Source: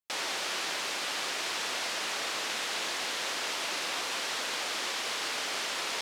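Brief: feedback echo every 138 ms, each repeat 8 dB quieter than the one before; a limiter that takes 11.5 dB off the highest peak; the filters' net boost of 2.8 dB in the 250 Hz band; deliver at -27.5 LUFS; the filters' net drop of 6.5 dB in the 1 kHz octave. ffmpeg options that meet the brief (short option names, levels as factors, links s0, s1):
-af "equalizer=f=250:t=o:g=4.5,equalizer=f=1000:t=o:g=-9,alimiter=level_in=2.82:limit=0.0631:level=0:latency=1,volume=0.355,aecho=1:1:138|276|414|552|690:0.398|0.159|0.0637|0.0255|0.0102,volume=3.76"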